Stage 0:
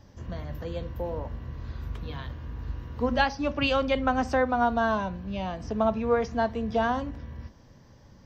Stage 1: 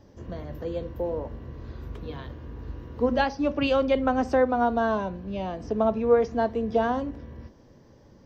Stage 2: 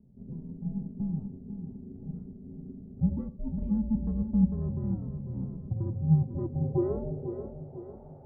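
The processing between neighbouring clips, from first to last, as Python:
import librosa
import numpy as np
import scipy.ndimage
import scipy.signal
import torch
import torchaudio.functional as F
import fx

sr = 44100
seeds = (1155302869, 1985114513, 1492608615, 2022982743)

y1 = fx.peak_eq(x, sr, hz=390.0, db=10.0, octaves=1.5)
y1 = F.gain(torch.from_numpy(y1), -3.5).numpy()
y2 = y1 * np.sin(2.0 * np.pi * 320.0 * np.arange(len(y1)) / sr)
y2 = fx.filter_sweep_lowpass(y2, sr, from_hz=180.0, to_hz=770.0, start_s=5.98, end_s=7.91, q=2.7)
y2 = fx.echo_feedback(y2, sr, ms=498, feedback_pct=48, wet_db=-9.5)
y2 = F.gain(torch.from_numpy(y2), -2.5).numpy()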